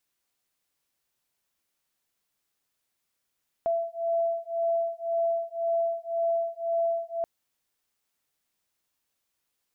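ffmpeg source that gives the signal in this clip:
ffmpeg -f lavfi -i "aevalsrc='0.0398*(sin(2*PI*670*t)+sin(2*PI*671.9*t))':duration=3.58:sample_rate=44100" out.wav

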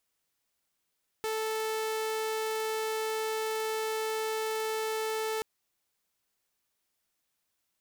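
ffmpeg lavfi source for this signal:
ffmpeg -f lavfi -i "aevalsrc='0.0422*(2*mod(439*t,1)-1)':duration=4.18:sample_rate=44100" out.wav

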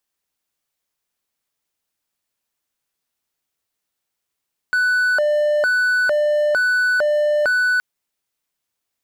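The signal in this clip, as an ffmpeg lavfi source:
ffmpeg -f lavfi -i "aevalsrc='0.237*(1-4*abs(mod((1043*t+447/1.1*(0.5-abs(mod(1.1*t,1)-0.5)))+0.25,1)-0.5))':duration=3.07:sample_rate=44100" out.wav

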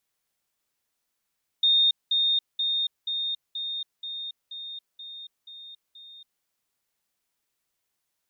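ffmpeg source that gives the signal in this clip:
ffmpeg -f lavfi -i "aevalsrc='pow(10,(-17-3*floor(t/0.48))/20)*sin(2*PI*3670*t)*clip(min(mod(t,0.48),0.28-mod(t,0.48))/0.005,0,1)':duration=4.8:sample_rate=44100" out.wav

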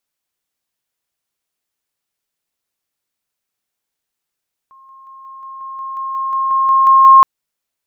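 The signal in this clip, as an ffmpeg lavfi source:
ffmpeg -f lavfi -i "aevalsrc='pow(10,(-41+3*floor(t/0.18))/20)*sin(2*PI*1070*t)':duration=2.52:sample_rate=44100" out.wav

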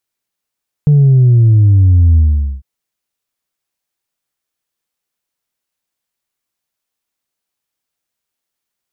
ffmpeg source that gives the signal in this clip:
ffmpeg -f lavfi -i "aevalsrc='0.562*clip((1.75-t)/0.45,0,1)*tanh(1.12*sin(2*PI*150*1.75/log(65/150)*(exp(log(65/150)*t/1.75)-1)))/tanh(1.12)':duration=1.75:sample_rate=44100" out.wav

